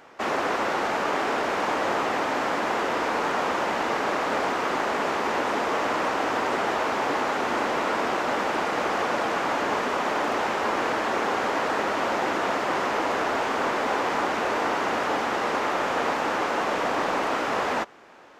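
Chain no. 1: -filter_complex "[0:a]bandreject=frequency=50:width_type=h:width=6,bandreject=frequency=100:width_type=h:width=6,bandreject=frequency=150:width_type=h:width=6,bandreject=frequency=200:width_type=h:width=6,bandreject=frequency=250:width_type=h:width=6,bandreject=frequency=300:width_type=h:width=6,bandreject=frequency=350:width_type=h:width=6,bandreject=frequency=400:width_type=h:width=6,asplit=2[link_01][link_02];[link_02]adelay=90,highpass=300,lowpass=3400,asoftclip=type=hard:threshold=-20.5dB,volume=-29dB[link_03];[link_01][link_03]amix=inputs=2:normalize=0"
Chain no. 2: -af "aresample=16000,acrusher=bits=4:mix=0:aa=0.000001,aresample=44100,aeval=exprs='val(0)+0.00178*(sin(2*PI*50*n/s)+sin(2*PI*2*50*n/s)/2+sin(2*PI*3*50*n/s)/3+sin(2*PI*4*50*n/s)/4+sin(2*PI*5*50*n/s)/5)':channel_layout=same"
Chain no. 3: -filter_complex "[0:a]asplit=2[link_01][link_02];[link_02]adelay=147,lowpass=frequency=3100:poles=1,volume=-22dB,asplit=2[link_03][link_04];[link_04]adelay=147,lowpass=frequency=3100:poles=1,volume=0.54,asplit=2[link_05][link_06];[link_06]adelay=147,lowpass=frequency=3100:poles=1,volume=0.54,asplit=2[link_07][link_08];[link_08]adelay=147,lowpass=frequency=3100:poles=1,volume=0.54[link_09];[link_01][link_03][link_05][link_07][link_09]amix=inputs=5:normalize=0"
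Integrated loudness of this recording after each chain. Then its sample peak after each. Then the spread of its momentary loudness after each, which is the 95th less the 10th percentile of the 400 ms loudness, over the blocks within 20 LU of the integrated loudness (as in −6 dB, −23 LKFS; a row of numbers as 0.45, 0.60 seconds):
−25.5, −24.5, −25.5 LKFS; −12.0, −11.5, −12.0 dBFS; 1, 1, 1 LU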